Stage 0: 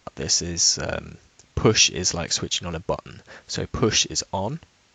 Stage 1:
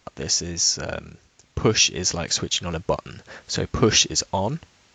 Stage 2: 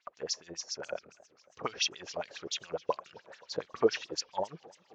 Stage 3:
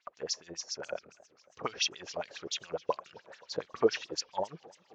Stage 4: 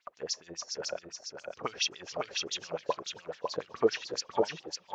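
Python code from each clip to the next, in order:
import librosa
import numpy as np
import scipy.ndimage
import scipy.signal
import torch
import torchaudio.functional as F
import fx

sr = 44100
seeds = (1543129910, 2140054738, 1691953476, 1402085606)

y1 = fx.rider(x, sr, range_db=4, speed_s=2.0)
y2 = fx.filter_lfo_bandpass(y1, sr, shape='sine', hz=7.2, low_hz=450.0, high_hz=5400.0, q=3.3)
y2 = fx.high_shelf(y2, sr, hz=2600.0, db=-8.5)
y2 = fx.echo_warbled(y2, sr, ms=269, feedback_pct=65, rate_hz=2.8, cents=197, wet_db=-23.0)
y3 = y2
y4 = y3 + 10.0 ** (-4.0 / 20.0) * np.pad(y3, (int(551 * sr / 1000.0), 0))[:len(y3)]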